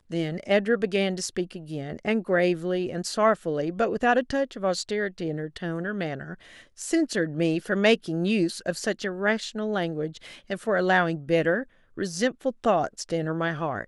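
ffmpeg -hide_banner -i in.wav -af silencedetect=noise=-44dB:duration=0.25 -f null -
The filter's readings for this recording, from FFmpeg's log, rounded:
silence_start: 11.64
silence_end: 11.97 | silence_duration: 0.34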